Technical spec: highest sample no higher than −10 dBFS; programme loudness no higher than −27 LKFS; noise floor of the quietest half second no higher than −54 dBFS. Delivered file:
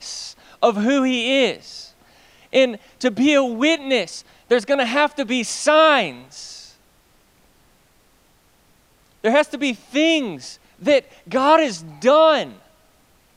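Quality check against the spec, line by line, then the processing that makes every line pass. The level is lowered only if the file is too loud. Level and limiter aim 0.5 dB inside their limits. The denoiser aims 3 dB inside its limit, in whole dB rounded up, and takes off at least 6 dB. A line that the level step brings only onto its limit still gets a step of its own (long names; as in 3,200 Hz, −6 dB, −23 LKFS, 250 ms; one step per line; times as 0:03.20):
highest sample −3.0 dBFS: out of spec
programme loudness −18.5 LKFS: out of spec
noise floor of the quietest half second −57 dBFS: in spec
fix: level −9 dB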